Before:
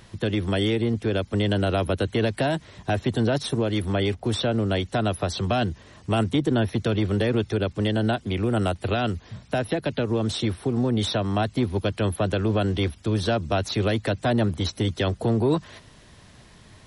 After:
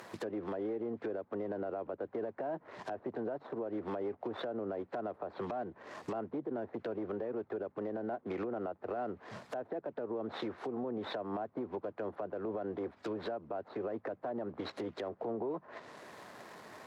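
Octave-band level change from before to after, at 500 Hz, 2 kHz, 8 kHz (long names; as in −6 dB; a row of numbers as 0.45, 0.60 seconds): −11.5 dB, −18.0 dB, below −25 dB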